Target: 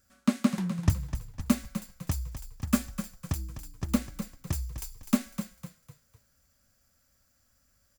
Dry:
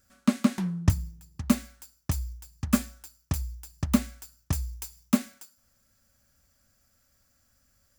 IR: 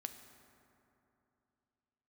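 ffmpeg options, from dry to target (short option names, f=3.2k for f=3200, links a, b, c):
-filter_complex "[0:a]asettb=1/sr,asplit=3[a][b][c];[a]atrim=end=3.344[d];[b]atrim=start=3.34:end=4.54,asetpts=PTS-STARTPTS,afade=t=in:d=0.004:c=qsin,afade=t=out:st=1.196:d=0.004:c=qsin,tremolo=f=260:d=0.4[e];[c]atrim=start=4.536[f];[d][e]acrossfade=d=0.004:c1=hsin:c2=qsin[g];[g][f]acrossfade=d=0.004:c1=qsin:c2=hsin,asplit=5[h][i][j][k][l];[i]adelay=252,afreqshift=-33,volume=-10dB[m];[j]adelay=504,afreqshift=-66,volume=-18.4dB[n];[k]adelay=756,afreqshift=-99,volume=-26.8dB[o];[l]adelay=1008,afreqshift=-132,volume=-35.2dB[p];[h][m][n][o][p]amix=inputs=5:normalize=0,volume=-2dB"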